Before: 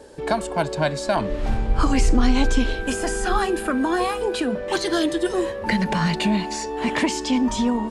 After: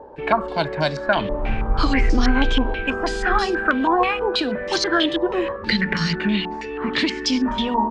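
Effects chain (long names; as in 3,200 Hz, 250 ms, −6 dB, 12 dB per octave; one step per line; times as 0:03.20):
0:05.56–0:07.46: flat-topped bell 750 Hz −10.5 dB 1.1 octaves
mains-hum notches 60/120/180/240 Hz
low-pass on a step sequencer 6.2 Hz 940–5,300 Hz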